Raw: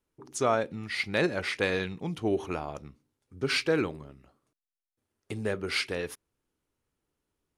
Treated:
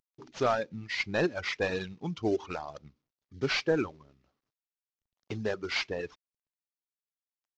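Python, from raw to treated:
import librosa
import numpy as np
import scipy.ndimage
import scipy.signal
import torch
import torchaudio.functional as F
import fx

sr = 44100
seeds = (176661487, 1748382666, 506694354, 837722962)

y = fx.cvsd(x, sr, bps=32000)
y = fx.dereverb_blind(y, sr, rt60_s=1.4)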